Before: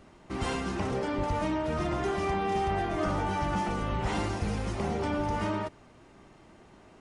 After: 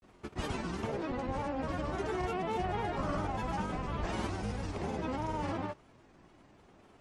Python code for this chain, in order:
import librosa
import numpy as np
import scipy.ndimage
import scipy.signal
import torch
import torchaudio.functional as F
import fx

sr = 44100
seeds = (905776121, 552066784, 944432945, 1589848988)

y = fx.granulator(x, sr, seeds[0], grain_ms=100.0, per_s=20.0, spray_ms=100.0, spread_st=3)
y = F.gain(torch.from_numpy(y), -4.0).numpy()